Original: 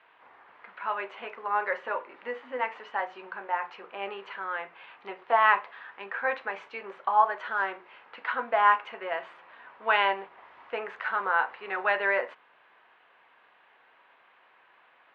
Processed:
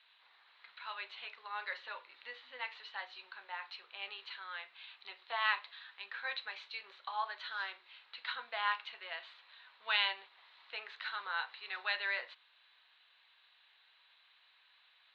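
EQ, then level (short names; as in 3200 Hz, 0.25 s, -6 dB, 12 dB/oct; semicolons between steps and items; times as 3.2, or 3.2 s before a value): band-pass 4000 Hz, Q 10; +16.5 dB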